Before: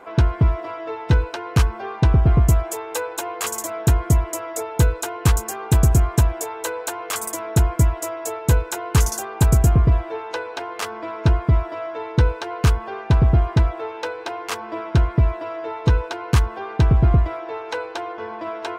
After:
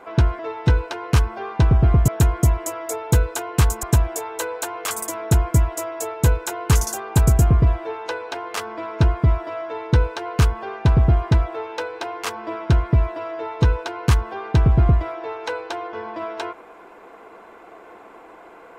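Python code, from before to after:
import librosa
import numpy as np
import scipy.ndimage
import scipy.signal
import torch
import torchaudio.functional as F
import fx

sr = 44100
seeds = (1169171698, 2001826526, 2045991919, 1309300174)

y = fx.edit(x, sr, fx.cut(start_s=0.39, length_s=0.43),
    fx.cut(start_s=2.51, length_s=1.24),
    fx.cut(start_s=5.5, length_s=0.58), tone=tone)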